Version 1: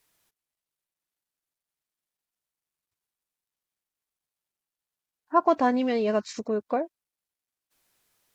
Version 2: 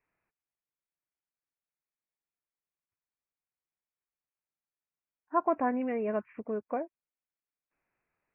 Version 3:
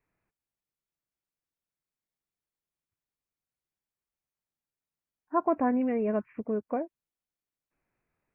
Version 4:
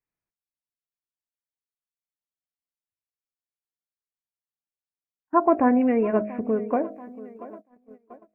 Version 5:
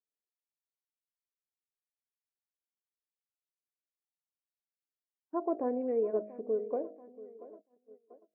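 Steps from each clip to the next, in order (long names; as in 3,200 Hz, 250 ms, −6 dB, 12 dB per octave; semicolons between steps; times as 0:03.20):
Butterworth low-pass 2,600 Hz 96 dB per octave; level −6.5 dB
low-shelf EQ 400 Hz +9.5 dB; level −1.5 dB
hum removal 52.64 Hz, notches 14; tape delay 685 ms, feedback 69%, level −17 dB, low-pass 2,400 Hz; noise gate −49 dBFS, range −20 dB; level +7.5 dB
resonant band-pass 450 Hz, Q 3; level −5 dB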